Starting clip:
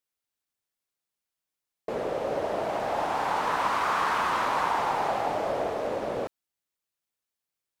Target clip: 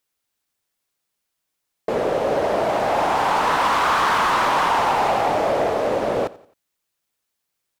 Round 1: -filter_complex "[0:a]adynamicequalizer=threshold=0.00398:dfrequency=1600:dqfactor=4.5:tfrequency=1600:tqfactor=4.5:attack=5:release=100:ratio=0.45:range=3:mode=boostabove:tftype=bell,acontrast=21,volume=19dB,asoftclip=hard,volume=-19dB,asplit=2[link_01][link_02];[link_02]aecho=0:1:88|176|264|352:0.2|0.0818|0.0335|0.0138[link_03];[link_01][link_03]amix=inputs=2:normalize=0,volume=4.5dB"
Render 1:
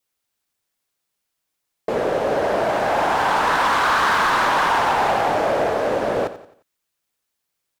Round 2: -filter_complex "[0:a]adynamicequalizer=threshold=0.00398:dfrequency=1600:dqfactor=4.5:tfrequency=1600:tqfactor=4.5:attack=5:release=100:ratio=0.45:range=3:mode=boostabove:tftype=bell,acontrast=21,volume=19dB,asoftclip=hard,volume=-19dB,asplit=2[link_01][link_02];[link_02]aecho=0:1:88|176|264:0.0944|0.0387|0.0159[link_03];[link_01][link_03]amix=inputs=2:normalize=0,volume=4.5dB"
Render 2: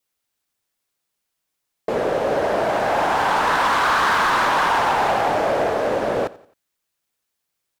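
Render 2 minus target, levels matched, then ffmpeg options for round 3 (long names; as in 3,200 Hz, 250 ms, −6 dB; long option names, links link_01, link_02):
2,000 Hz band +2.5 dB
-filter_complex "[0:a]acontrast=21,volume=19dB,asoftclip=hard,volume=-19dB,asplit=2[link_01][link_02];[link_02]aecho=0:1:88|176|264:0.0944|0.0387|0.0159[link_03];[link_01][link_03]amix=inputs=2:normalize=0,volume=4.5dB"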